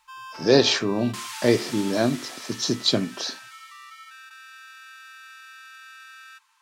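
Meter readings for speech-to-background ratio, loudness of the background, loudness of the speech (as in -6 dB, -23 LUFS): 16.5 dB, -39.5 LUFS, -23.0 LUFS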